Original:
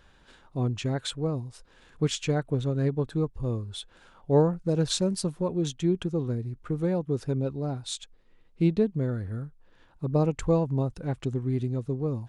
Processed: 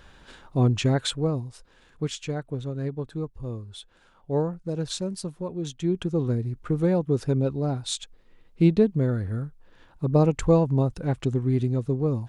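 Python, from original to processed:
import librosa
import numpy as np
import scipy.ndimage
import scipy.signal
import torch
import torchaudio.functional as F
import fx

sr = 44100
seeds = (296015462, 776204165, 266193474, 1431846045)

y = fx.gain(x, sr, db=fx.line((0.86, 7.0), (2.18, -4.0), (5.58, -4.0), (6.26, 4.5)))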